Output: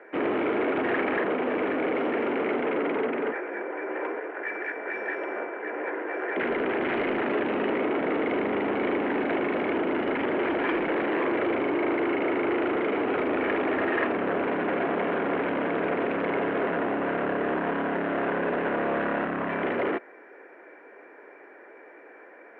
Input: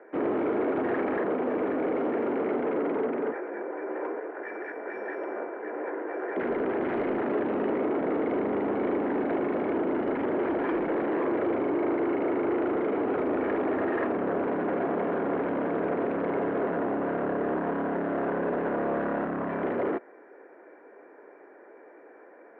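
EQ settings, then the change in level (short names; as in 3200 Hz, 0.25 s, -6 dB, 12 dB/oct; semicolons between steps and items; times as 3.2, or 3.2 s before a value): bell 2800 Hz +13 dB 1.6 oct; 0.0 dB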